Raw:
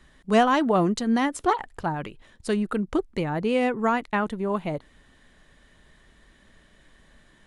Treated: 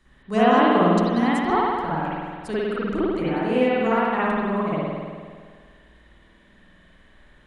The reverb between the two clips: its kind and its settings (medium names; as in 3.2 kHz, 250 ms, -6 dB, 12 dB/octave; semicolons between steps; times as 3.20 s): spring tank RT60 1.8 s, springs 51 ms, chirp 45 ms, DRR -10 dB; trim -7 dB